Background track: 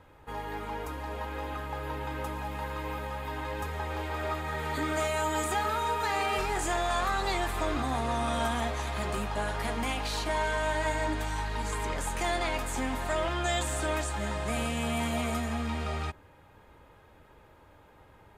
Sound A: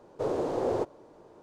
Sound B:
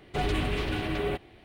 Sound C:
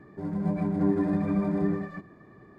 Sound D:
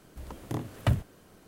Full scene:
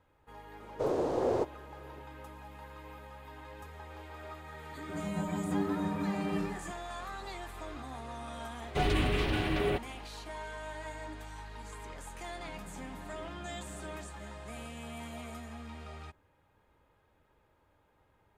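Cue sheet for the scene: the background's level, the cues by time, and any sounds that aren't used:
background track -13 dB
0.60 s: add A -1 dB
4.71 s: add C -5 dB + tilt shelf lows -3 dB
8.61 s: add B -0.5 dB
12.22 s: add C -17.5 dB + compression, threshold -29 dBFS
not used: D

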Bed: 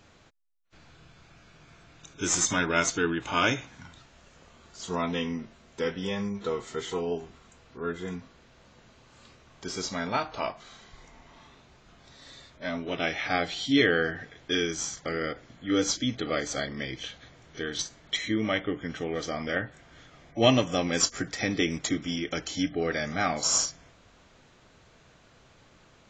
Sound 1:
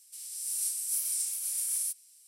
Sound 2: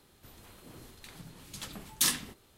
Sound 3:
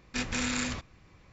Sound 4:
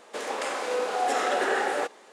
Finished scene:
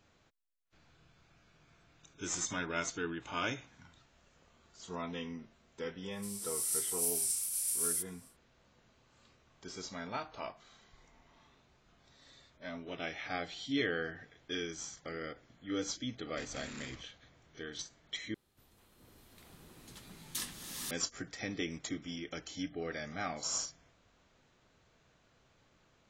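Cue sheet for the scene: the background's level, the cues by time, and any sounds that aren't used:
bed -11 dB
6.10 s: add 1 -2 dB, fades 0.10 s
16.22 s: add 3 -16.5 dB
18.34 s: replace with 2 -12.5 dB + swelling reverb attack 810 ms, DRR -7 dB
not used: 4

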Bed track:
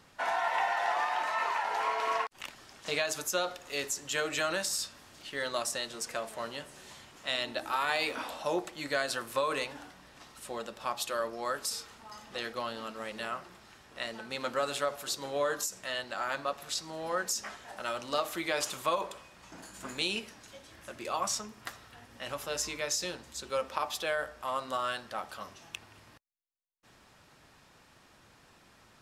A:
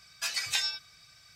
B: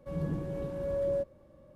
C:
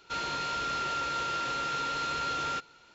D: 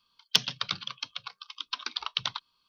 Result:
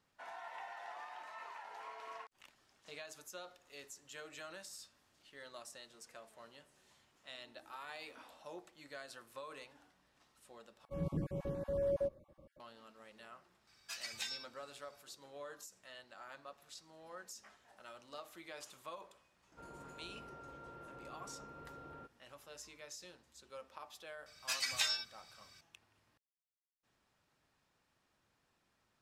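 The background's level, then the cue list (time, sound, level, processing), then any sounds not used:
bed track -18.5 dB
10.85 s: replace with B -3.5 dB + random holes in the spectrogram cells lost 22%
13.67 s: add A -13 dB
19.47 s: add C -11.5 dB + Bessel low-pass 620 Hz
24.26 s: add A -5 dB
not used: D

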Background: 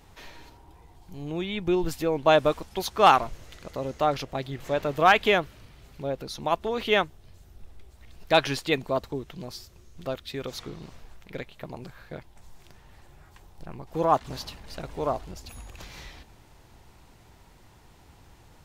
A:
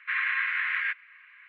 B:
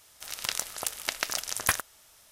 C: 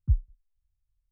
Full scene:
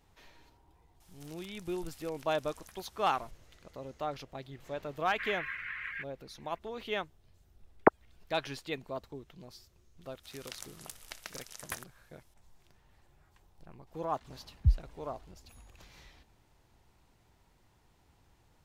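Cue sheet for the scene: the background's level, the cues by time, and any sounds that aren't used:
background -12.5 dB
1.00 s: add B -9 dB + compression, threshold -44 dBFS
5.11 s: add A -10 dB + reverb removal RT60 0.65 s
7.80 s: add C -2 dB + formants replaced by sine waves
10.03 s: add B -15 dB
14.57 s: add C -1 dB

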